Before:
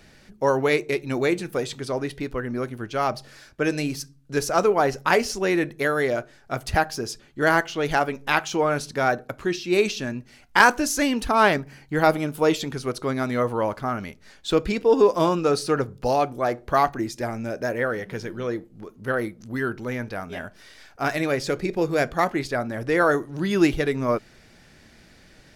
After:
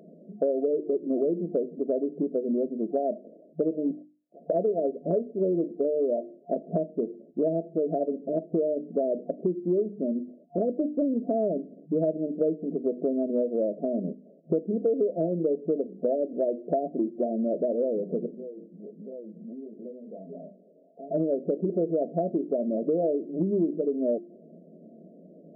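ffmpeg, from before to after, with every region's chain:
-filter_complex "[0:a]asettb=1/sr,asplit=3[s0][s1][s2];[s0]atrim=end=3.914[s3];[s1]atrim=start=3.91:end=4.5,asetpts=PTS-STARTPTS,afade=t=in:d=0.004:c=qsin,afade=t=out:st=0.586:d=0.004:c=qsin,aeval=exprs='clip(val(0),-1,0.0531)':c=same,lowpass=f=3200:t=q:w=0.5098,lowpass=f=3200:t=q:w=0.6013,lowpass=f=3200:t=q:w=0.9,lowpass=f=3200:t=q:w=2.563,afreqshift=-3800[s4];[s2]atrim=start=4.496[s5];[s3][s4]acrossfade=d=0.004:c1=hsin:c2=qsin[s6];[s6][s5]acrossfade=d=0.004:c1=qsin:c2=hsin,asettb=1/sr,asplit=3[s7][s8][s9];[s7]atrim=end=18.264[s10];[s8]atrim=start=18.26:end=21.11,asetpts=PTS-STARTPTS,afade=t=in:d=0.004:c=qsin,afade=t=out:st=2.846:d=0.004:c=qsin,flanger=delay=18.5:depth=5.5:speed=1.4,acompressor=threshold=0.00794:ratio=8:attack=3.2:release=140:knee=1:detection=peak,equalizer=f=330:w=7:g=-6[s11];[s9]atrim=start=21.106[s12];[s10][s11]acrossfade=d=0.004:c1=hsin:c2=qsin[s13];[s13][s12]acrossfade=d=0.004:c1=qsin:c2=hsin,bandreject=f=50:t=h:w=6,bandreject=f=100:t=h:w=6,bandreject=f=150:t=h:w=6,bandreject=f=200:t=h:w=6,bandreject=f=250:t=h:w=6,bandreject=f=300:t=h:w=6,bandreject=f=350:t=h:w=6,afftfilt=real='re*between(b*sr/4096,160,710)':imag='im*between(b*sr/4096,160,710)':win_size=4096:overlap=0.75,acompressor=threshold=0.0282:ratio=6,volume=2.37"

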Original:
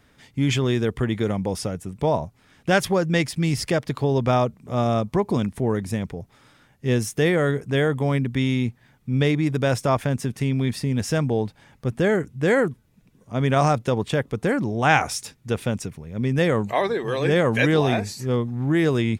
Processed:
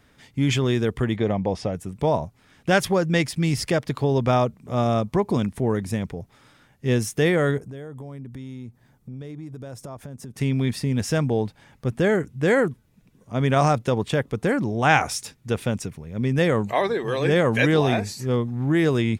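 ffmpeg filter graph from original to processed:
-filter_complex "[0:a]asettb=1/sr,asplit=3[s0][s1][s2];[s0]atrim=end=1.164[s3];[s1]atrim=start=1.16:end=1.74,asetpts=PTS-STARTPTS,afade=t=in:d=0.004:c=qsin,afade=t=out:st=0.576:d=0.004:c=qsin,lowpass=4200,equalizer=f=670:w=2.4:g=6,bandreject=f=1400:w=7.6[s4];[s2]atrim=start=1.736[s5];[s3][s4]acrossfade=d=0.004:c1=hsin:c2=qsin[s6];[s6][s5]acrossfade=d=0.004:c1=qsin:c2=hsin,asettb=1/sr,asplit=3[s7][s8][s9];[s7]atrim=end=7.584[s10];[s8]atrim=start=7.58:end=10.37,asetpts=PTS-STARTPTS,afade=t=in:d=0.004:c=qsin,afade=t=out:st=2.786:d=0.004:c=qsin,equalizer=f=2500:w=0.72:g=-9.5,acompressor=threshold=0.0178:ratio=5:attack=3.2:release=140:knee=1:detection=peak[s11];[s9]atrim=start=10.366[s12];[s10][s11]acrossfade=d=0.004:c1=hsin:c2=qsin[s13];[s13][s12]acrossfade=d=0.004:c1=qsin:c2=hsin"

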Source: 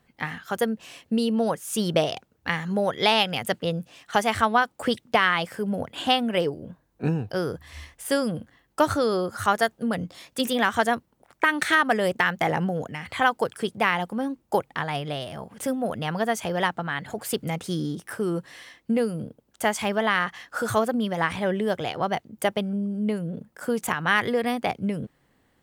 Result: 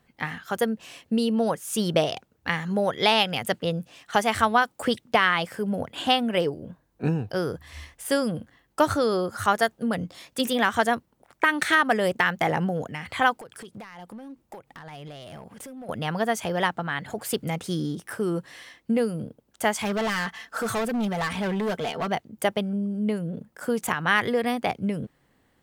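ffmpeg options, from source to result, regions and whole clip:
-filter_complex "[0:a]asettb=1/sr,asplit=3[s0][s1][s2];[s0]atrim=end=4.344[s3];[s1]atrim=start=4.34:end=4.85,asetpts=PTS-STARTPTS,afade=t=in:d=0.004:c=qsin,afade=t=out:st=0.506:d=0.004:c=qsin,highshelf=f=5400:g=4.5,bandreject=f=50:t=h:w=6,bandreject=f=100:t=h:w=6,bandreject=f=150:t=h:w=6[s4];[s2]atrim=start=4.846[s5];[s3][s4]acrossfade=d=0.004:c1=hsin:c2=qsin[s6];[s6][s5]acrossfade=d=0.004:c1=qsin:c2=hsin,asettb=1/sr,asplit=3[s7][s8][s9];[s7]atrim=end=13.374[s10];[s8]atrim=start=13.37:end=15.89,asetpts=PTS-STARTPTS,afade=t=in:d=0.004:c=qsin,afade=t=out:st=2.516:d=0.004:c=qsin,acompressor=threshold=0.0158:ratio=16:attack=3.2:release=140:knee=1:detection=peak,volume=59.6,asoftclip=hard,volume=0.0168[s11];[s9]atrim=start=15.886[s12];[s10][s11]acrossfade=d=0.004:c1=hsin:c2=qsin[s13];[s13][s12]acrossfade=d=0.004:c1=qsin:c2=hsin,asettb=1/sr,asplit=3[s14][s15][s16];[s14]atrim=end=19.854[s17];[s15]atrim=start=19.85:end=22.12,asetpts=PTS-STARTPTS,afade=t=in:d=0.004:c=qsin,afade=t=out:st=2.266:d=0.004:c=qsin,aecho=1:1:4.5:0.59,atrim=end_sample=100107,asoftclip=type=hard:threshold=0.0668[s18];[s16]atrim=start=22.116[s19];[s17][s18]acrossfade=d=0.004:c1=hsin:c2=qsin[s20];[s20][s19]acrossfade=d=0.004:c1=qsin:c2=hsin"

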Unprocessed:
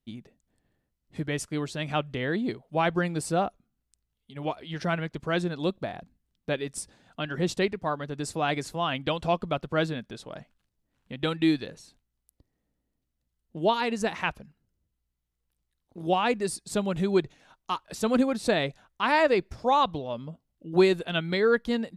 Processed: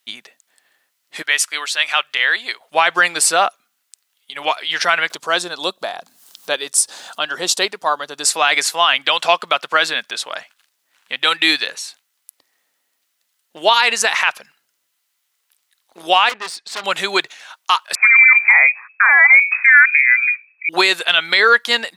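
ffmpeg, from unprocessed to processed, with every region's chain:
-filter_complex "[0:a]asettb=1/sr,asplit=3[s0][s1][s2];[s0]atrim=end=1.224[s3];[s1]atrim=start=1.22:end=2.61,asetpts=PTS-STARTPTS,afade=t=in:d=0.004:c=qsin,afade=t=out:st=1.386:d=0.004:c=qsin,highpass=f=1300:p=1,equalizer=f=7600:t=o:w=1.8:g=-3.5[s4];[s2]atrim=start=2.606[s5];[s3][s4]acrossfade=d=0.004:c1=hsin:c2=qsin[s6];[s6][s5]acrossfade=d=0.004:c1=qsin:c2=hsin,asettb=1/sr,asplit=3[s7][s8][s9];[s7]atrim=end=5.104[s10];[s8]atrim=start=5.1:end=8.25,asetpts=PTS-STARTPTS,afade=t=in:d=0.004:c=qsin,afade=t=out:st=3.146:d=0.004:c=qsin,acompressor=mode=upward:threshold=0.0178:ratio=2.5:attack=3.2:release=140:knee=2.83:detection=peak,equalizer=f=2100:w=1.1:g=-12[s11];[s9]atrim=start=8.246[s12];[s10][s11]acrossfade=d=0.004:c1=hsin:c2=qsin[s13];[s13][s12]acrossfade=d=0.004:c1=qsin:c2=hsin,asettb=1/sr,asplit=3[s14][s15][s16];[s14]atrim=end=16.294[s17];[s15]atrim=start=16.29:end=16.84,asetpts=PTS-STARTPTS,afade=t=in:d=0.004:c=qsin,afade=t=out:st=0.546:d=0.004:c=qsin,lowpass=3400,aeval=exprs='(tanh(56.2*val(0)+0.65)-tanh(0.65))/56.2':c=same[s18];[s16]atrim=start=16.836[s19];[s17][s18]acrossfade=d=0.004:c1=hsin:c2=qsin[s20];[s20][s19]acrossfade=d=0.004:c1=qsin:c2=hsin,asettb=1/sr,asplit=3[s21][s22][s23];[s21]atrim=end=17.954[s24];[s22]atrim=start=17.95:end=20.69,asetpts=PTS-STARTPTS,afade=t=in:d=0.004:c=qsin,afade=t=out:st=2.736:d=0.004:c=qsin,bandreject=f=60:t=h:w=6,bandreject=f=120:t=h:w=6,bandreject=f=180:t=h:w=6,bandreject=f=240:t=h:w=6,bandreject=f=300:t=h:w=6,bandreject=f=360:t=h:w=6,lowpass=f=2200:t=q:w=0.5098,lowpass=f=2200:t=q:w=0.6013,lowpass=f=2200:t=q:w=0.9,lowpass=f=2200:t=q:w=2.563,afreqshift=-2600[s25];[s23]atrim=start=20.686[s26];[s24][s25]acrossfade=d=0.004:c1=hsin:c2=qsin[s27];[s27][s26]acrossfade=d=0.004:c1=qsin:c2=hsin,highpass=1300,alimiter=level_in=15:limit=0.891:release=50:level=0:latency=1,volume=0.891"

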